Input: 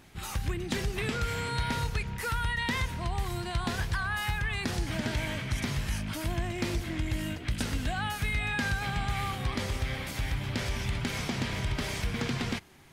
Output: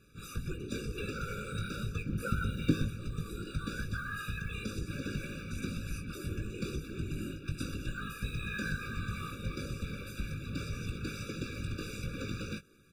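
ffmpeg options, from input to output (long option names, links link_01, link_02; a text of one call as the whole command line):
ffmpeg -i in.wav -filter_complex "[0:a]asettb=1/sr,asplit=3[link_01][link_02][link_03];[link_01]atrim=end=2.064[link_04];[link_02]atrim=start=2.06:end=2.88,asetpts=PTS-STARTPTS,afade=type=in:duration=0.004:curve=qsin,afade=type=out:start_time=0.816:duration=0.004:curve=qsin,equalizer=frequency=200:width_type=o:width=1.7:gain=13.5[link_05];[link_03]atrim=start=2.876[link_06];[link_04][link_05]acrossfade=duration=0.004:curve1=hsin:curve2=qsin[link_07];[link_07][link_06]acrossfade=duration=0.004:curve1=qsin:curve2=hsin,acrossover=split=330|700|6700[link_08][link_09][link_10][link_11];[link_10]acrusher=bits=5:mode=log:mix=0:aa=0.000001[link_12];[link_08][link_09][link_12][link_11]amix=inputs=4:normalize=0,afftfilt=real='hypot(re,im)*cos(2*PI*random(0))':imag='hypot(re,im)*sin(2*PI*random(1))':win_size=512:overlap=0.75,asplit=2[link_13][link_14];[link_14]adelay=19,volume=-8dB[link_15];[link_13][link_15]amix=inputs=2:normalize=0,afftfilt=real='re*eq(mod(floor(b*sr/1024/570),2),0)':imag='im*eq(mod(floor(b*sr/1024/570),2),0)':win_size=1024:overlap=0.75" out.wav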